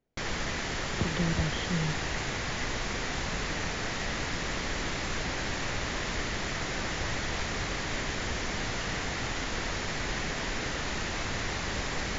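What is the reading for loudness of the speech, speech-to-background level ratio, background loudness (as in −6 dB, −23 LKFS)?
−33.5 LKFS, −1.0 dB, −32.5 LKFS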